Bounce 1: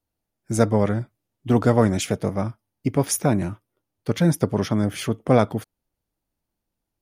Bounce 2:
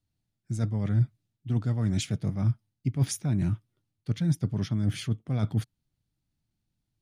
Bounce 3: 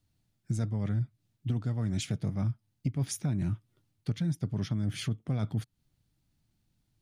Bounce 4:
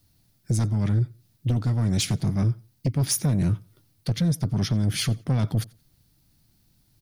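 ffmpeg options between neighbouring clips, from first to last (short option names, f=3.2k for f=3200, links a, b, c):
-af "highshelf=f=3.2k:g=-12,areverse,acompressor=threshold=-27dB:ratio=6,areverse,equalizer=f=125:t=o:w=1:g=10,equalizer=f=500:t=o:w=1:g=-10,equalizer=f=1k:t=o:w=1:g=-6,equalizer=f=4k:t=o:w=1:g=8,equalizer=f=8k:t=o:w=1:g=7"
-af "acompressor=threshold=-34dB:ratio=6,volume=6dB"
-af "aexciter=amount=1.1:drive=8.4:freq=4.2k,aeval=exprs='0.133*sin(PI/2*2*val(0)/0.133)':c=same,aecho=1:1:88|176:0.0631|0.0158"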